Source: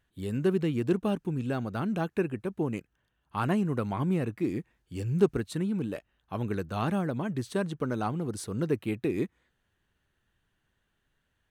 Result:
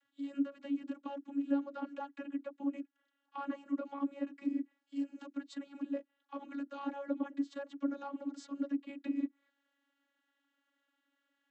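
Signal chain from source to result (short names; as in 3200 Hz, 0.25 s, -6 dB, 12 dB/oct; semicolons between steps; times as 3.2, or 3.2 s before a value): compressor 4:1, threshold -28 dBFS, peak gain reduction 10 dB; vocoder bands 32, saw 280 Hz; mismatched tape noise reduction encoder only; gain -5 dB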